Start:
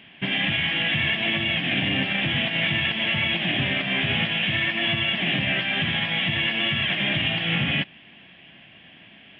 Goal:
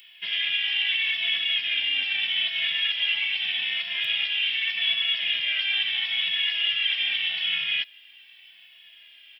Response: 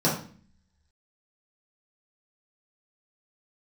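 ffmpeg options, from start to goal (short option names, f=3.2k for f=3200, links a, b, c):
-filter_complex "[0:a]crystalizer=i=8:c=0,aderivative,asplit=2[a][b];[b]adelay=2.3,afreqshift=-0.81[c];[a][c]amix=inputs=2:normalize=1"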